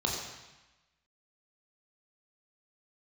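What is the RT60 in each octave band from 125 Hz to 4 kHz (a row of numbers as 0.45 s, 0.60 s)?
1.1 s, 1.1 s, 0.95 s, 1.1 s, 1.2 s, 1.1 s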